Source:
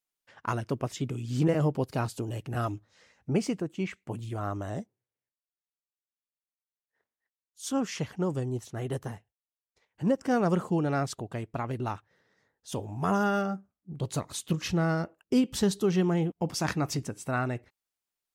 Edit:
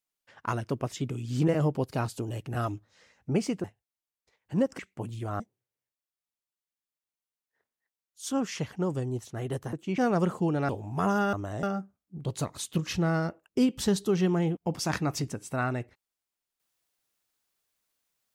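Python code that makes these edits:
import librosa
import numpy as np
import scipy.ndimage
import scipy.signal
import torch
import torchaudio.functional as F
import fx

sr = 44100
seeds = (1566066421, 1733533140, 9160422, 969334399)

y = fx.edit(x, sr, fx.swap(start_s=3.64, length_s=0.25, other_s=9.13, other_length_s=1.15),
    fx.move(start_s=4.5, length_s=0.3, to_s=13.38),
    fx.cut(start_s=10.99, length_s=1.75), tone=tone)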